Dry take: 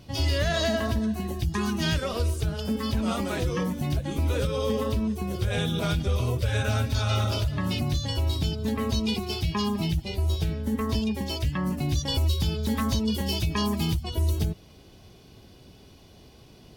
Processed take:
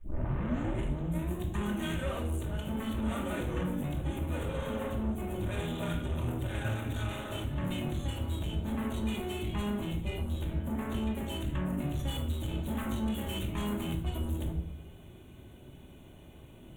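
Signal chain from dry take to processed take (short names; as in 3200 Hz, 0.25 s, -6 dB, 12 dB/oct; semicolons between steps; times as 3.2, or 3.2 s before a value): tape start at the beginning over 1.37 s; tube stage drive 31 dB, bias 0.35; requantised 12-bit, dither none; Butterworth band-stop 5000 Hz, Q 1.3; reverb RT60 0.65 s, pre-delay 3 ms, DRR 0.5 dB; gain -3.5 dB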